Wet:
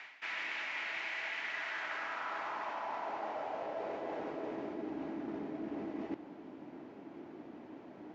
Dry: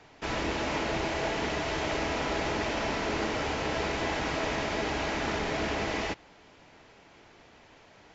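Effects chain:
parametric band 460 Hz −6.5 dB 0.5 octaves
band-pass filter sweep 2,100 Hz → 300 Hz, 0:01.36–0:04.98
reversed playback
downward compressor 10 to 1, threshold −54 dBFS, peak gain reduction 19 dB
reversed playback
high-pass filter 160 Hz 6 dB per octave
level +17 dB

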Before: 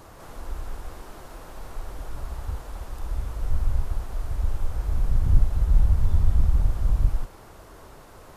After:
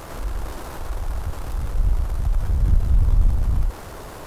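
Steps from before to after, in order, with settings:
power curve on the samples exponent 0.7
time stretch by overlap-add 0.51×, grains 27 ms

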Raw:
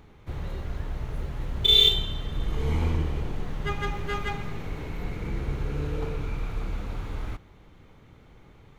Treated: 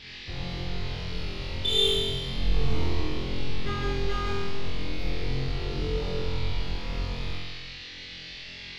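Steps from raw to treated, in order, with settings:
soft clipping −12.5 dBFS, distortion −19 dB
noise in a band 1,800–4,800 Hz −43 dBFS
high-shelf EQ 8,100 Hz −11.5 dB
flutter between parallel walls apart 3.9 metres, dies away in 1.3 s
dynamic equaliser 1,500 Hz, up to −4 dB, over −40 dBFS, Q 1.1
level −4 dB

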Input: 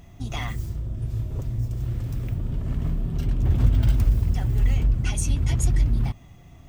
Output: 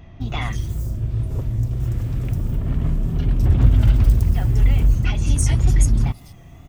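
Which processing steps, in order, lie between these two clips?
multiband delay without the direct sound lows, highs 210 ms, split 4,600 Hz
tape wow and flutter 54 cents
level +5 dB

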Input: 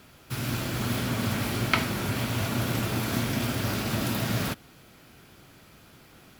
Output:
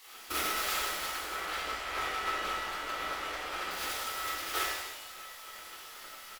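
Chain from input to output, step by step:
0:01.25–0:03.71: low-pass filter 2,300 Hz 6 dB per octave
repeating echo 102 ms, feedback 23%, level −6 dB
compressor whose output falls as the input rises −32 dBFS, ratio −0.5
dynamic equaliser 150 Hz, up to +5 dB, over −60 dBFS, Q 4.6
gate on every frequency bin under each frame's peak −15 dB weak
hollow resonant body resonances 1,300 Hz, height 12 dB, ringing for 45 ms
reverb with rising layers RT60 1.1 s, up +7 semitones, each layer −8 dB, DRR −4.5 dB
level −3 dB

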